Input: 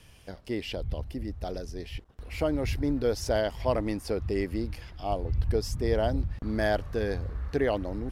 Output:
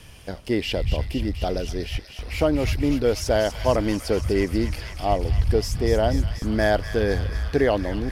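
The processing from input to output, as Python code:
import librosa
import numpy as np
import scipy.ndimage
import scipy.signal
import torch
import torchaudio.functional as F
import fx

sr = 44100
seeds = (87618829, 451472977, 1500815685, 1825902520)

p1 = fx.rider(x, sr, range_db=4, speed_s=0.5)
p2 = x + F.gain(torch.from_numpy(p1), 2.0).numpy()
y = fx.echo_wet_highpass(p2, sr, ms=242, feedback_pct=79, hz=1700.0, wet_db=-8.0)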